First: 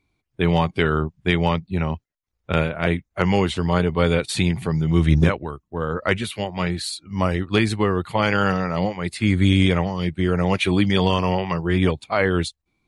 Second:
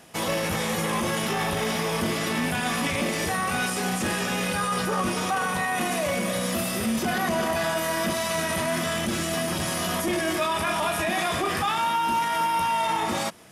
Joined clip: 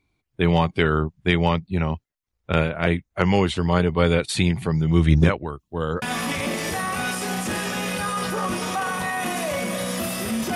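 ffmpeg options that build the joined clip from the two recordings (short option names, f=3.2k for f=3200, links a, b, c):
-filter_complex "[0:a]asettb=1/sr,asplit=3[a][b][c];[a]atrim=end=5.594[d];[b]atrim=start=5.59:end=6.02,asetpts=PTS-STARTPTS,afade=t=in:d=0.004:c=qsin,afade=t=out:st=0.426:d=0.004:c=qsin,highshelf=f=2.4k:t=q:w=1.5:g=7[e];[c]atrim=start=6.016[f];[d][e]acrossfade=d=0.004:c1=hsin:c2=qsin[g];[g][f]acrossfade=d=0.004:c1=qsin:c2=hsin,apad=whole_dur=10.55,atrim=end=10.55,atrim=end=6.022[h];[1:a]atrim=start=2.568:end=7.1[i];[h][i]acrossfade=d=0.004:c1=hsin:c2=hsin"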